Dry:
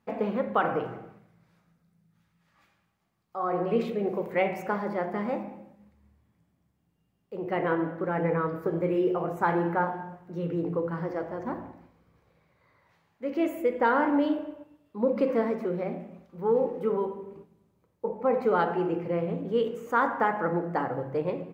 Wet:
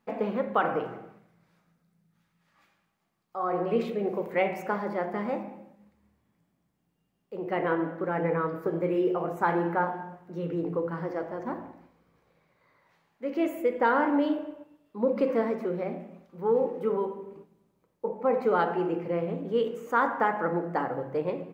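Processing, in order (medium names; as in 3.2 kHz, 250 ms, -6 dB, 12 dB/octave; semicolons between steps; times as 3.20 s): peaking EQ 86 Hz -13.5 dB 0.83 oct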